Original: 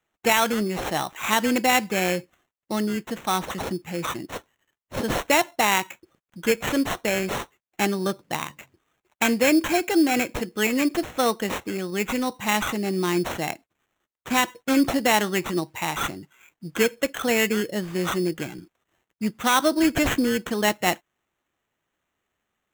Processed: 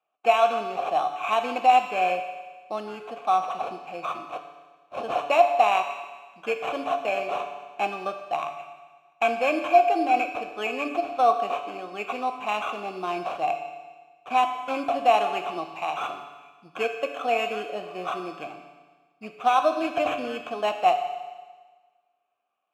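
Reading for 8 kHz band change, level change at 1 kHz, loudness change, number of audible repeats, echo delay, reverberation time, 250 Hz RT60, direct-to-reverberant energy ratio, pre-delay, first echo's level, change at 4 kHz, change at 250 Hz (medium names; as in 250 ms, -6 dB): under -15 dB, +4.5 dB, -1.5 dB, no echo, no echo, 1.4 s, 1.4 s, 5.5 dB, 7 ms, no echo, -8.0 dB, -12.5 dB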